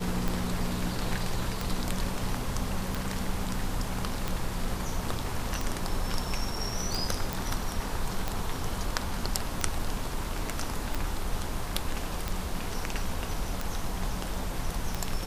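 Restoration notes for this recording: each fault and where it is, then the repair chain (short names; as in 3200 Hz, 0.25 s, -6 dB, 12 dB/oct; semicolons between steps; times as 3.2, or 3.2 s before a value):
tick 45 rpm
7.33 pop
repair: de-click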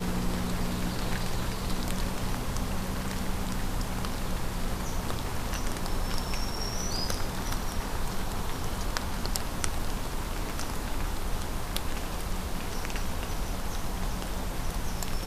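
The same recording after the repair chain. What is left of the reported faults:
none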